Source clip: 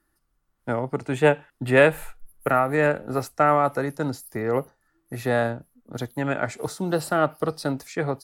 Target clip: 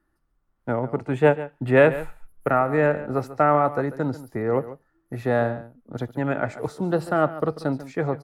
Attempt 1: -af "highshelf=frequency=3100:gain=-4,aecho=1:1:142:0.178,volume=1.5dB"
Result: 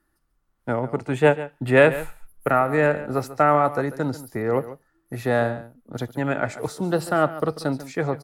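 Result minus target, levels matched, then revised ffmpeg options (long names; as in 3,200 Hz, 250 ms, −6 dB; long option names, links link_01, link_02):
8,000 Hz band +9.0 dB
-af "highshelf=frequency=3100:gain=-15,aecho=1:1:142:0.178,volume=1.5dB"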